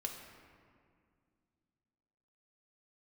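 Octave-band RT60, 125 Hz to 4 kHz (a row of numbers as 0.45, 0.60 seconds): 3.0, 3.1, 2.3, 2.0, 1.8, 1.2 seconds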